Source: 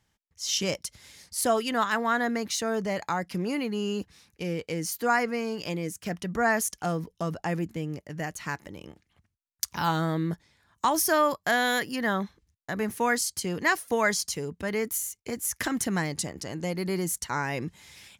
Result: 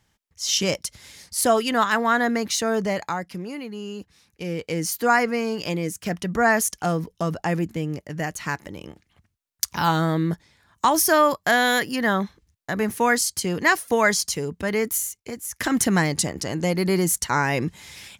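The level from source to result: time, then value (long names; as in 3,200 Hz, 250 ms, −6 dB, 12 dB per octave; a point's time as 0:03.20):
0:02.88 +5.5 dB
0:03.49 −4 dB
0:04.00 −4 dB
0:04.78 +5.5 dB
0:15.01 +5.5 dB
0:15.48 −3 dB
0:15.74 +8 dB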